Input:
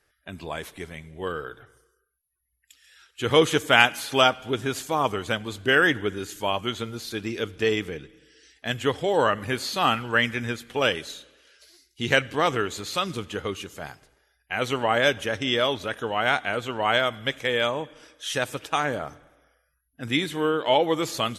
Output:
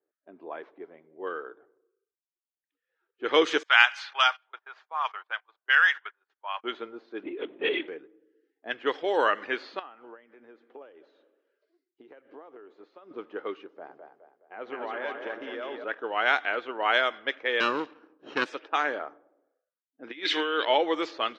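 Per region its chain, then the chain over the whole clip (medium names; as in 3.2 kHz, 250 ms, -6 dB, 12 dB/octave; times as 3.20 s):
3.63–6.64 s: high-pass 900 Hz 24 dB/octave + gate -39 dBFS, range -22 dB
7.23–7.88 s: companding laws mixed up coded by mu + peaking EQ 1.2 kHz -12 dB 0.98 oct + LPC vocoder at 8 kHz whisper
9.79–13.11 s: tilt EQ +2 dB/octave + compression 20:1, threshold -34 dBFS
13.70–15.84 s: compression, threshold -27 dBFS + two-band feedback delay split 410 Hz, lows 111 ms, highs 209 ms, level -4 dB
17.60–18.46 s: comb filter that takes the minimum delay 0.73 ms + bass shelf 420 Hz +11.5 dB
20.04–20.65 s: frequency weighting D + compressor with a negative ratio -26 dBFS
whole clip: level-controlled noise filter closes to 450 Hz, open at -18 dBFS; Chebyshev band-pass 320–5400 Hz, order 3; dynamic bell 1.7 kHz, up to +4 dB, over -35 dBFS, Q 1.2; trim -3 dB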